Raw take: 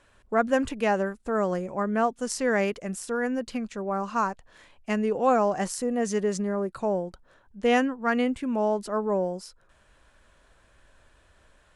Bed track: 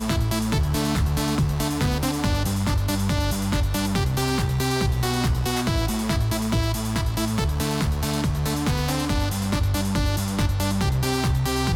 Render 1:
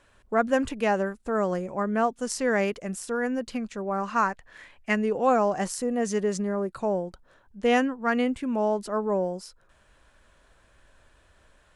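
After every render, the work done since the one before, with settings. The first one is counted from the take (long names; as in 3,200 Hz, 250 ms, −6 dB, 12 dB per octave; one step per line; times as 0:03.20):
0:03.98–0:04.95: parametric band 1,900 Hz +9 dB 0.82 octaves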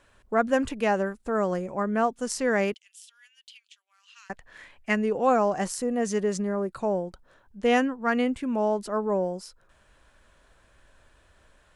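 0:02.74–0:04.30: four-pole ladder high-pass 2,900 Hz, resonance 70%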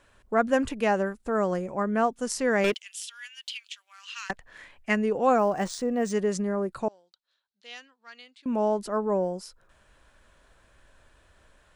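0:02.64–0:04.31: mid-hump overdrive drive 20 dB, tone 6,600 Hz, clips at −16 dBFS
0:05.38–0:06.12: linearly interpolated sample-rate reduction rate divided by 3×
0:06.88–0:08.46: resonant band-pass 4,100 Hz, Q 4.1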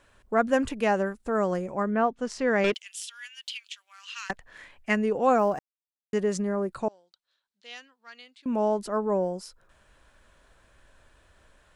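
0:01.90–0:02.73: low-pass filter 2,700 Hz → 6,300 Hz
0:05.59–0:06.13: silence
0:06.76–0:07.71: linear-phase brick-wall low-pass 9,900 Hz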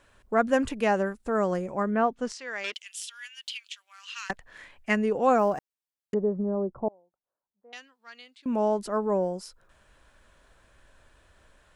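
0:02.32–0:02.76: resonant band-pass 4,900 Hz, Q 0.64
0:06.14–0:07.73: inverse Chebyshev low-pass filter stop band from 3,100 Hz, stop band 60 dB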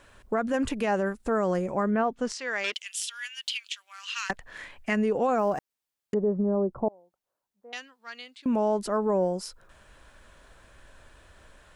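in parallel at −1 dB: downward compressor, threshold −33 dBFS, peak gain reduction 15 dB
on the sum: brickwall limiter −17.5 dBFS, peak gain reduction 8 dB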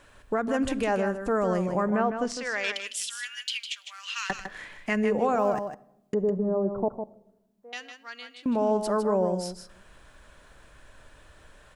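on a send: single-tap delay 155 ms −8 dB
on the sum: rectangular room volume 3,500 cubic metres, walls furnished, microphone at 0.44 metres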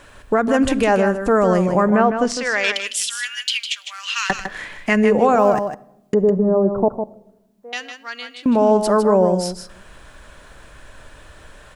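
level +10 dB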